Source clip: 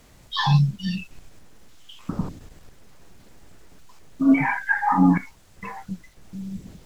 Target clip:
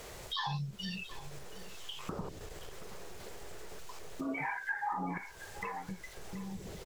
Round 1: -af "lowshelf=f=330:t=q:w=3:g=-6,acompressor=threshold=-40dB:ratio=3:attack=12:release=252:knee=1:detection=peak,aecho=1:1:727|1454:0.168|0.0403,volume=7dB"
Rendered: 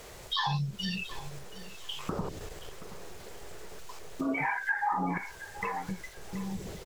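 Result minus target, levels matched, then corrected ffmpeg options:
compressor: peak gain reduction -6 dB
-af "lowshelf=f=330:t=q:w=3:g=-6,acompressor=threshold=-49dB:ratio=3:attack=12:release=252:knee=1:detection=peak,aecho=1:1:727|1454:0.168|0.0403,volume=7dB"

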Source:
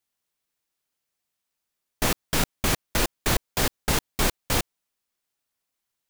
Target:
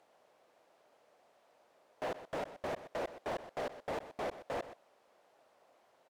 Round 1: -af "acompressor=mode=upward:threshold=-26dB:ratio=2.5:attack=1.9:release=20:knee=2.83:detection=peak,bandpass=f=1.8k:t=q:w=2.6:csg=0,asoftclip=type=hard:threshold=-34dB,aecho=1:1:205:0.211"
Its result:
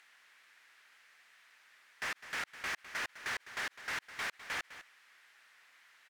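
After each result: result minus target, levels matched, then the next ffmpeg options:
500 Hz band -17.0 dB; echo 81 ms late
-af "acompressor=mode=upward:threshold=-26dB:ratio=2.5:attack=1.9:release=20:knee=2.83:detection=peak,bandpass=f=610:t=q:w=2.6:csg=0,asoftclip=type=hard:threshold=-34dB,aecho=1:1:205:0.211"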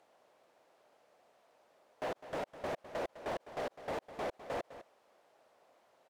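echo 81 ms late
-af "acompressor=mode=upward:threshold=-26dB:ratio=2.5:attack=1.9:release=20:knee=2.83:detection=peak,bandpass=f=610:t=q:w=2.6:csg=0,asoftclip=type=hard:threshold=-34dB,aecho=1:1:124:0.211"

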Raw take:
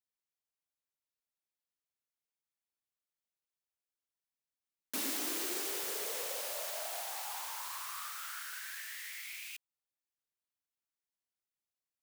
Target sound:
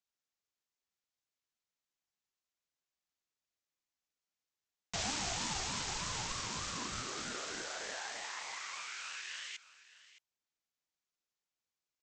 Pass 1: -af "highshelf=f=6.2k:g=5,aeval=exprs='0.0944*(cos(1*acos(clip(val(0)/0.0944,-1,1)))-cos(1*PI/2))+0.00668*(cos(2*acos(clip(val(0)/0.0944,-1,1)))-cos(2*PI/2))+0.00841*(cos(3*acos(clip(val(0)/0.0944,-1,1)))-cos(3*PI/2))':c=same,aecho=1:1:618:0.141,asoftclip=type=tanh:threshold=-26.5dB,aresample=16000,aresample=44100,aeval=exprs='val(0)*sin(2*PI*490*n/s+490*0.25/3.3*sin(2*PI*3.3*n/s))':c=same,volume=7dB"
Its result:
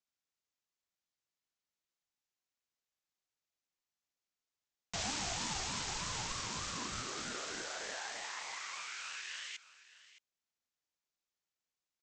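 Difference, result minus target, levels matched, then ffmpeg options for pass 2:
soft clip: distortion +13 dB
-af "highshelf=f=6.2k:g=5,aeval=exprs='0.0944*(cos(1*acos(clip(val(0)/0.0944,-1,1)))-cos(1*PI/2))+0.00668*(cos(2*acos(clip(val(0)/0.0944,-1,1)))-cos(2*PI/2))+0.00841*(cos(3*acos(clip(val(0)/0.0944,-1,1)))-cos(3*PI/2))':c=same,aecho=1:1:618:0.141,asoftclip=type=tanh:threshold=-18.5dB,aresample=16000,aresample=44100,aeval=exprs='val(0)*sin(2*PI*490*n/s+490*0.25/3.3*sin(2*PI*3.3*n/s))':c=same,volume=7dB"

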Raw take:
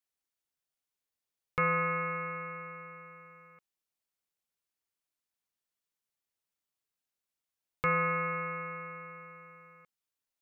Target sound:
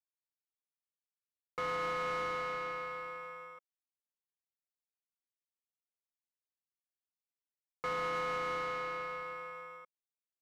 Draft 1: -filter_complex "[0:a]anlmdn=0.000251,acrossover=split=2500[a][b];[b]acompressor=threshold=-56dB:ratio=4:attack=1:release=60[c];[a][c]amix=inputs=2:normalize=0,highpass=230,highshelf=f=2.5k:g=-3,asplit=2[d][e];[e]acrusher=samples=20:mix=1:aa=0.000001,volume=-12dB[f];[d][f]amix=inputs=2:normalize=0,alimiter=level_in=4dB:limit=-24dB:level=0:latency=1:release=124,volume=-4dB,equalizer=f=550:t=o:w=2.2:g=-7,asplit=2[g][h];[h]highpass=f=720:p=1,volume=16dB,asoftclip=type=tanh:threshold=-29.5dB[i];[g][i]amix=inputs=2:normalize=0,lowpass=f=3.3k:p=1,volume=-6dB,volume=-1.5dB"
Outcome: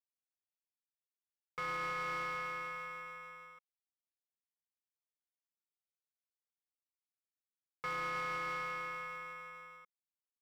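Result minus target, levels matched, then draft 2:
500 Hz band -6.5 dB
-filter_complex "[0:a]anlmdn=0.000251,acrossover=split=2500[a][b];[b]acompressor=threshold=-56dB:ratio=4:attack=1:release=60[c];[a][c]amix=inputs=2:normalize=0,highpass=230,highshelf=f=2.5k:g=-3,asplit=2[d][e];[e]acrusher=samples=20:mix=1:aa=0.000001,volume=-12dB[f];[d][f]amix=inputs=2:normalize=0,alimiter=level_in=4dB:limit=-24dB:level=0:latency=1:release=124,volume=-4dB,equalizer=f=550:t=o:w=2.2:g=4.5,asplit=2[g][h];[h]highpass=f=720:p=1,volume=16dB,asoftclip=type=tanh:threshold=-29.5dB[i];[g][i]amix=inputs=2:normalize=0,lowpass=f=3.3k:p=1,volume=-6dB,volume=-1.5dB"

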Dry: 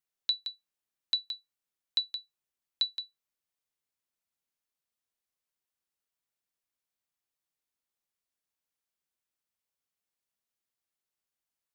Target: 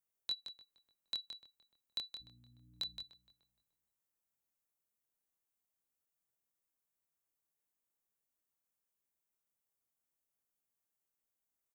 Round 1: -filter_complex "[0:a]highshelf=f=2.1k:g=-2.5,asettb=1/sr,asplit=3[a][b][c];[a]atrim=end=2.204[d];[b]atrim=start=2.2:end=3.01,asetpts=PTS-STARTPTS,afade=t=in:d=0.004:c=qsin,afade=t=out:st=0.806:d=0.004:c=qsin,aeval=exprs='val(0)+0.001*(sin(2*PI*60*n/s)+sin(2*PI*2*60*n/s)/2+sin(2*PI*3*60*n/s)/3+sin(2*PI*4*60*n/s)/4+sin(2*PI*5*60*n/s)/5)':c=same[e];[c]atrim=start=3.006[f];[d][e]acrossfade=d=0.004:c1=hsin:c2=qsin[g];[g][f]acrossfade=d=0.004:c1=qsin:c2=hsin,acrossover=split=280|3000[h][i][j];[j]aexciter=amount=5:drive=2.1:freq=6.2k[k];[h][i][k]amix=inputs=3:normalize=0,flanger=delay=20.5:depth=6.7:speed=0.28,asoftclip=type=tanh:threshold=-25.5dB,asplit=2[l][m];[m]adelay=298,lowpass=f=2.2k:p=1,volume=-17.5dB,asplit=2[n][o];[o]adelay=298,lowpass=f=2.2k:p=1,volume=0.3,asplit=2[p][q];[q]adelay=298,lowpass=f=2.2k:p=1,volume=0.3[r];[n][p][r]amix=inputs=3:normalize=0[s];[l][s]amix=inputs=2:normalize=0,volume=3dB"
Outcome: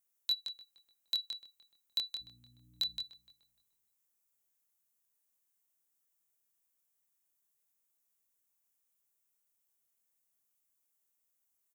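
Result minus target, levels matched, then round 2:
2000 Hz band -4.0 dB
-filter_complex "[0:a]highshelf=f=2.1k:g=-12,asettb=1/sr,asplit=3[a][b][c];[a]atrim=end=2.204[d];[b]atrim=start=2.2:end=3.01,asetpts=PTS-STARTPTS,afade=t=in:d=0.004:c=qsin,afade=t=out:st=0.806:d=0.004:c=qsin,aeval=exprs='val(0)+0.001*(sin(2*PI*60*n/s)+sin(2*PI*2*60*n/s)/2+sin(2*PI*3*60*n/s)/3+sin(2*PI*4*60*n/s)/4+sin(2*PI*5*60*n/s)/5)':c=same[e];[c]atrim=start=3.006[f];[d][e]acrossfade=d=0.004:c1=hsin:c2=qsin[g];[g][f]acrossfade=d=0.004:c1=qsin:c2=hsin,acrossover=split=280|3000[h][i][j];[j]aexciter=amount=5:drive=2.1:freq=6.2k[k];[h][i][k]amix=inputs=3:normalize=0,flanger=delay=20.5:depth=6.7:speed=0.28,asoftclip=type=tanh:threshold=-25.5dB,asplit=2[l][m];[m]adelay=298,lowpass=f=2.2k:p=1,volume=-17.5dB,asplit=2[n][o];[o]adelay=298,lowpass=f=2.2k:p=1,volume=0.3,asplit=2[p][q];[q]adelay=298,lowpass=f=2.2k:p=1,volume=0.3[r];[n][p][r]amix=inputs=3:normalize=0[s];[l][s]amix=inputs=2:normalize=0,volume=3dB"

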